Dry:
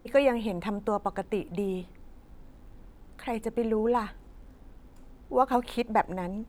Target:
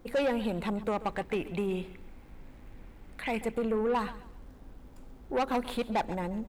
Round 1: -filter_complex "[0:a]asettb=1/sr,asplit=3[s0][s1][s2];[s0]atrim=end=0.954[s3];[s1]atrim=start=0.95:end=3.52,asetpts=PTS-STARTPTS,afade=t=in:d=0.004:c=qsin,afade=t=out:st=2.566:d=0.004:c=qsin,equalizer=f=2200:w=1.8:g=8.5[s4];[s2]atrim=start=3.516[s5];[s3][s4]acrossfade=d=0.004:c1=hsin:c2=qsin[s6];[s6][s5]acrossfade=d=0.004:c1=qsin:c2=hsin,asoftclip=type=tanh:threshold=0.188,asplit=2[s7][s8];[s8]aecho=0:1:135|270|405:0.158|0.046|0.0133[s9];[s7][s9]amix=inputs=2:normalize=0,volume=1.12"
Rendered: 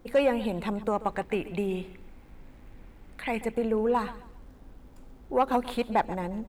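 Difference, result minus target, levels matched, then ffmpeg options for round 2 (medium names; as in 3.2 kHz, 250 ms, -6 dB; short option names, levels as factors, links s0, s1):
saturation: distortion -11 dB
-filter_complex "[0:a]asettb=1/sr,asplit=3[s0][s1][s2];[s0]atrim=end=0.954[s3];[s1]atrim=start=0.95:end=3.52,asetpts=PTS-STARTPTS,afade=t=in:d=0.004:c=qsin,afade=t=out:st=2.566:d=0.004:c=qsin,equalizer=f=2200:w=1.8:g=8.5[s4];[s2]atrim=start=3.516[s5];[s3][s4]acrossfade=d=0.004:c1=hsin:c2=qsin[s6];[s6][s5]acrossfade=d=0.004:c1=qsin:c2=hsin,asoftclip=type=tanh:threshold=0.0596,asplit=2[s7][s8];[s8]aecho=0:1:135|270|405:0.158|0.046|0.0133[s9];[s7][s9]amix=inputs=2:normalize=0,volume=1.12"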